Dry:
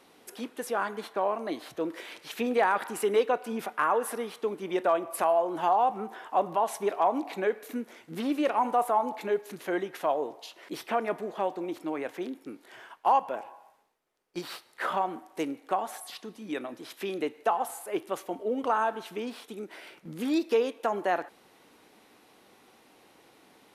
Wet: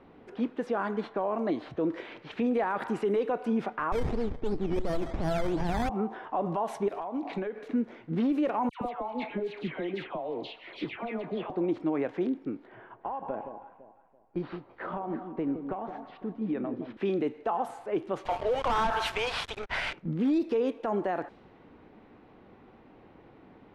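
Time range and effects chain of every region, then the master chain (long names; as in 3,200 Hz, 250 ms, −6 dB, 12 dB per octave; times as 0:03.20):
0:03.92–0:05.89: sample-and-hold swept by an LFO 13×, swing 60% 2.8 Hz + windowed peak hold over 17 samples
0:06.88–0:07.68: high-shelf EQ 3,800 Hz +11 dB + downward compressor 16 to 1, threshold −34 dBFS
0:08.69–0:11.50: flat-topped bell 3,000 Hz +10.5 dB 1.3 octaves + downward compressor 10 to 1, threshold −33 dBFS + all-pass dispersion lows, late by 121 ms, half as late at 1,400 Hz
0:12.67–0:16.97: downward compressor 12 to 1, threshold −31 dBFS + head-to-tape spacing loss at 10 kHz 23 dB + delay that swaps between a low-pass and a high-pass 168 ms, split 940 Hz, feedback 54%, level −7.5 dB
0:18.25–0:19.93: Bessel high-pass filter 1,000 Hz, order 6 + leveller curve on the samples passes 5
whole clip: low-pass that shuts in the quiet parts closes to 2,500 Hz, open at −23 dBFS; RIAA equalisation playback; brickwall limiter −22 dBFS; level +1.5 dB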